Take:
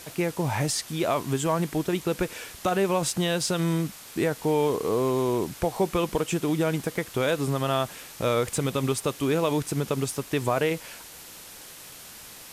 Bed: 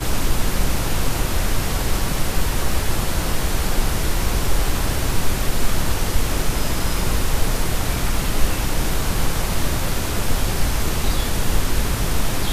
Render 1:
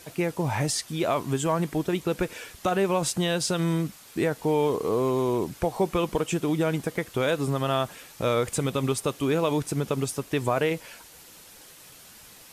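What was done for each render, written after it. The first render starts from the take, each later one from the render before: denoiser 6 dB, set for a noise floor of -45 dBFS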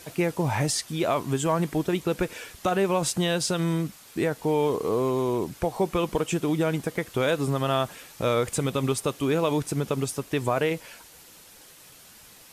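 vocal rider 2 s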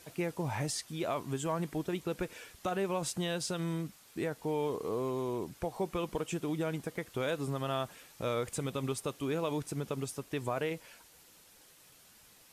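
gain -9.5 dB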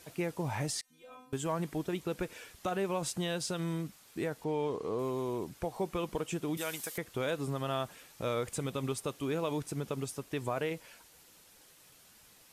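0.81–1.33 metallic resonator 250 Hz, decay 0.55 s, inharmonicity 0.002; 4.44–4.99 air absorption 58 m; 6.57–6.98 tilt +4.5 dB/oct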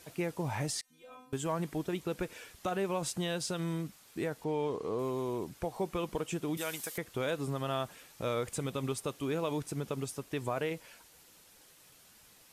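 nothing audible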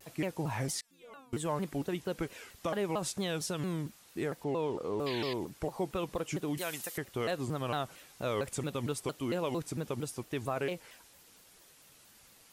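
5.06–5.34 painted sound noise 1600–4800 Hz -41 dBFS; shaped vibrato saw down 4.4 Hz, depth 250 cents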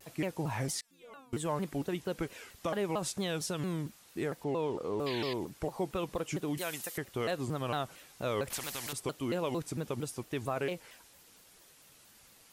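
8.5–8.93 spectral compressor 4:1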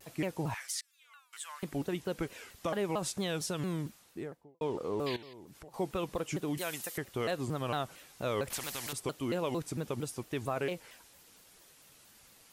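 0.54–1.63 HPF 1300 Hz 24 dB/oct; 3.87–4.61 studio fade out; 5.16–5.74 compressor, threshold -48 dBFS

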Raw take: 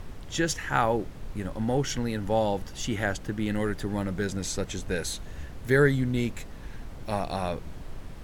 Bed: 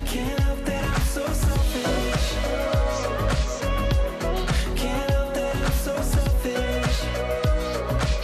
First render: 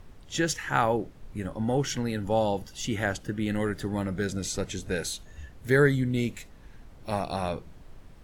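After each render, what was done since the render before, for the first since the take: noise print and reduce 9 dB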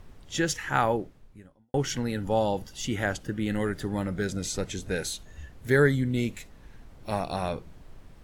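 0.92–1.74 fade out quadratic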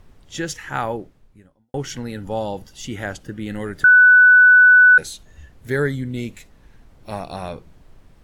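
3.84–4.98 bleep 1490 Hz -6.5 dBFS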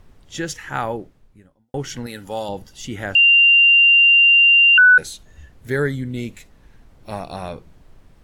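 2.06–2.49 tilt +2.5 dB/oct; 3.15–4.78 bleep 2780 Hz -8.5 dBFS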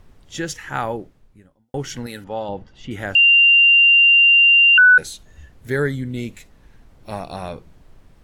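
2.24–2.91 LPF 2500 Hz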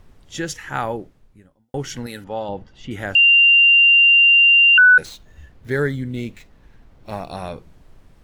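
5.05–7.28 median filter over 5 samples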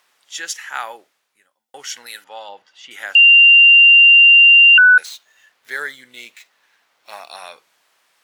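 HPF 810 Hz 12 dB/oct; tilt shelf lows -5.5 dB, about 1100 Hz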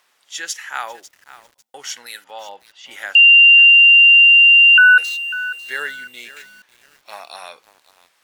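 lo-fi delay 0.547 s, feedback 35%, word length 6-bit, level -15 dB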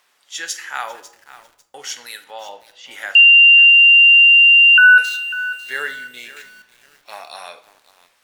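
shoebox room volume 150 m³, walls mixed, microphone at 0.34 m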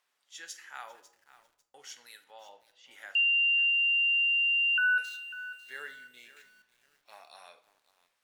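gain -17.5 dB

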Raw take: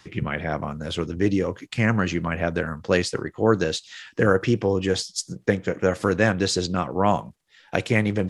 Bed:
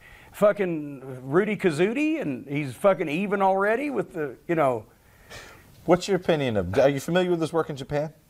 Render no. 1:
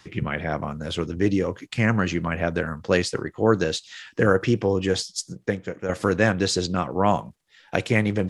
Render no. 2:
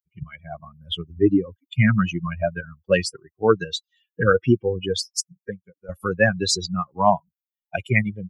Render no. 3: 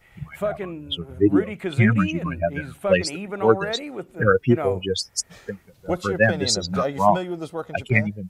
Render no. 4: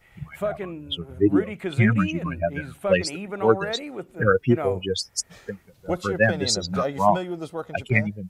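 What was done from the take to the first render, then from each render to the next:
5.01–5.89 fade out linear, to -9 dB
per-bin expansion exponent 3; AGC gain up to 9 dB
add bed -6 dB
gain -1.5 dB

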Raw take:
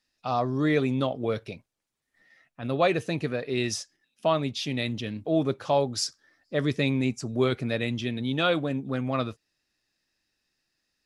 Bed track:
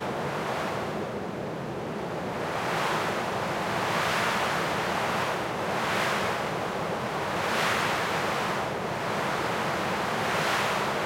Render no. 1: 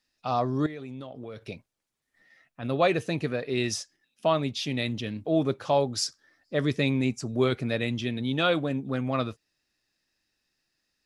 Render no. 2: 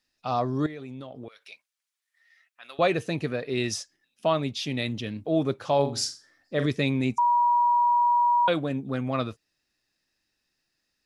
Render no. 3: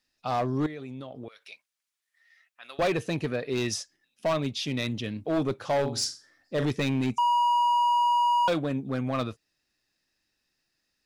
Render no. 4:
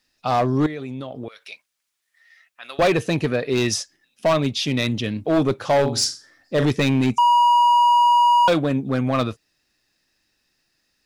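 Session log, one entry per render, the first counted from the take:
0.66–1.49 compressor 5:1, threshold -37 dBFS
1.28–2.79 HPF 1500 Hz; 5.75–6.66 flutter echo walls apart 7.3 m, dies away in 0.32 s; 7.18–8.48 bleep 961 Hz -18 dBFS
overloaded stage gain 21 dB
gain +8 dB

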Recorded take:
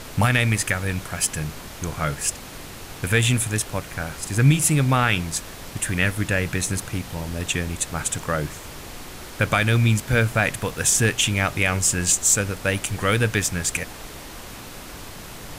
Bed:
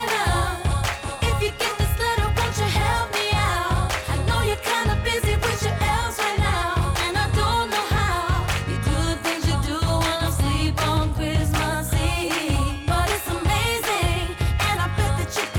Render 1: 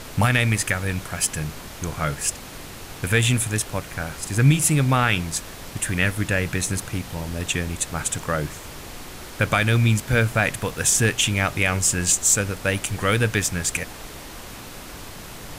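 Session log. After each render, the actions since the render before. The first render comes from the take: nothing audible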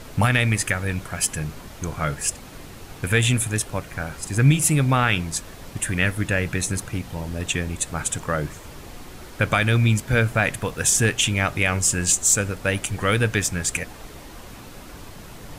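denoiser 6 dB, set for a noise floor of -38 dBFS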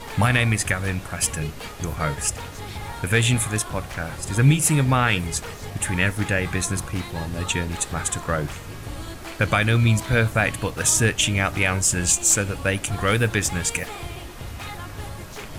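add bed -13.5 dB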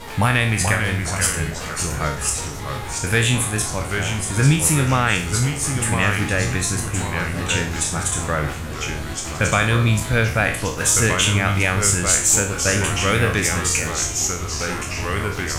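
spectral trails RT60 0.45 s; echoes that change speed 0.404 s, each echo -2 st, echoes 3, each echo -6 dB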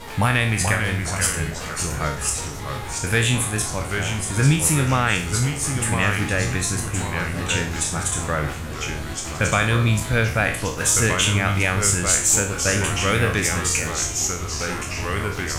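gain -1.5 dB

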